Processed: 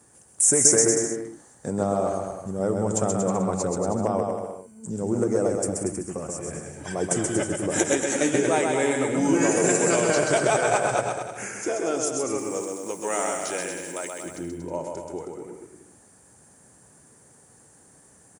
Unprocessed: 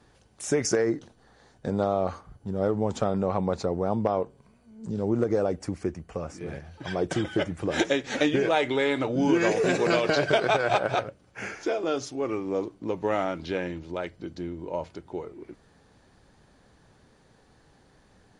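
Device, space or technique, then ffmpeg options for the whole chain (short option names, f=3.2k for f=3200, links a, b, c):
budget condenser microphone: -filter_complex "[0:a]asettb=1/sr,asplit=3[a][b][c];[a]atrim=end=12.384[d];[b]atrim=start=12.38:end=14.26,asetpts=PTS-STARTPTS,afade=t=in:d=0.004:c=qsin,afade=t=out:st=1.876:d=0.004:c=qsin,aemphasis=mode=production:type=riaa[e];[c]atrim=start=14.256[f];[d][e]acrossfade=d=0.004:c1=hsin:c2=qsin[g];[g][f]acrossfade=d=0.004:c1=qsin:c2=hsin,highpass=93,highshelf=f=5.8k:t=q:w=3:g=14,aecho=1:1:130|234|317.2|383.8|437:0.631|0.398|0.251|0.158|0.1"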